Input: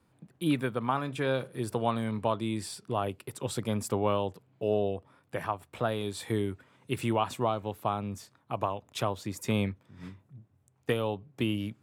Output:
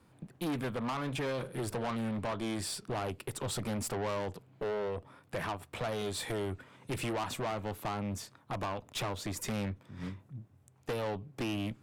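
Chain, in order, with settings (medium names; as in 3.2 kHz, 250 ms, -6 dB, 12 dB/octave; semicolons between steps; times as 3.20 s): compression 2:1, threshold -30 dBFS, peak gain reduction 5 dB; valve stage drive 37 dB, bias 0.35; loudspeaker Doppler distortion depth 0.17 ms; trim +6 dB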